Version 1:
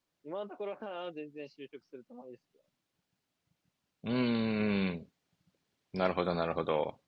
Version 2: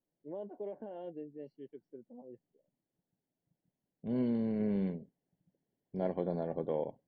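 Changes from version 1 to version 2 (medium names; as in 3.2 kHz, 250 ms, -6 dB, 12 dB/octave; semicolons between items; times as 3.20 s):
second voice: add peaking EQ 83 Hz -10 dB 0.67 oct; master: add boxcar filter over 35 samples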